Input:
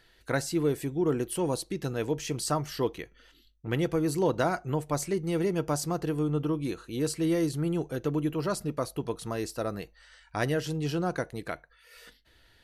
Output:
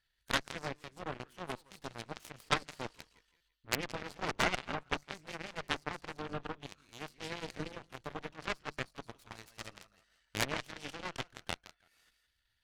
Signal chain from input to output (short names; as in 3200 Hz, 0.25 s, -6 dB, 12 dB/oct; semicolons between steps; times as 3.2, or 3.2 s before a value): bell 390 Hz -14.5 dB 1.8 oct; on a send: thinning echo 0.167 s, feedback 39%, high-pass 490 Hz, level -6.5 dB; on the sum: treble ducked by the level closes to 2500 Hz, closed at -30.5 dBFS; added harmonics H 3 -9 dB, 4 -42 dB, 6 -8 dB, 8 -12 dB, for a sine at -21 dBFS; stuck buffer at 3.37, samples 256, times 5; gain +6 dB